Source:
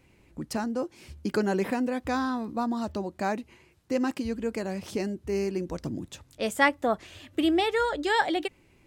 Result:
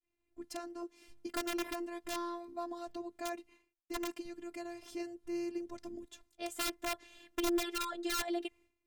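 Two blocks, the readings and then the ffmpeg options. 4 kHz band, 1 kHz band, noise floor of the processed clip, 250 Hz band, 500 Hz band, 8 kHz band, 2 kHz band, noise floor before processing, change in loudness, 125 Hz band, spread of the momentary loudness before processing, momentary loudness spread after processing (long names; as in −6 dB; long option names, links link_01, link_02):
−6.5 dB, −12.5 dB, −85 dBFS, −11.0 dB, −12.0 dB, −0.5 dB, −13.5 dB, −61 dBFS, −11.0 dB, below −25 dB, 12 LU, 12 LU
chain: -af "agate=range=-33dB:threshold=-49dB:ratio=3:detection=peak,aeval=exprs='(mod(7.94*val(0)+1,2)-1)/7.94':channel_layout=same,afftfilt=real='hypot(re,im)*cos(PI*b)':imag='0':win_size=512:overlap=0.75,volume=-7dB"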